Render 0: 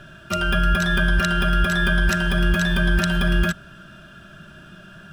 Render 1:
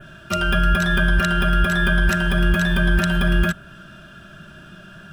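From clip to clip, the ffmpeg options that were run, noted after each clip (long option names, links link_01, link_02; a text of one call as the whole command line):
ffmpeg -i in.wav -af "adynamicequalizer=threshold=0.00631:dfrequency=5200:dqfactor=1.1:tfrequency=5200:tqfactor=1.1:attack=5:release=100:ratio=0.375:range=2.5:mode=cutabove:tftype=bell,volume=1.5dB" out.wav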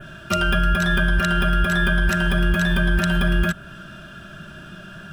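ffmpeg -i in.wav -af "acompressor=threshold=-21dB:ratio=2,volume=3dB" out.wav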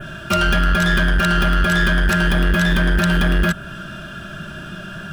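ffmpeg -i in.wav -af "asoftclip=type=tanh:threshold=-18.5dB,volume=7dB" out.wav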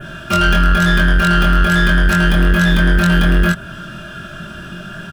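ffmpeg -i in.wav -filter_complex "[0:a]asplit=2[link_01][link_02];[link_02]adelay=23,volume=-3dB[link_03];[link_01][link_03]amix=inputs=2:normalize=0" out.wav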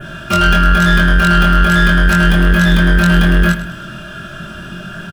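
ffmpeg -i in.wav -af "aecho=1:1:104|208|312|416:0.224|0.0963|0.0414|0.0178,volume=1.5dB" out.wav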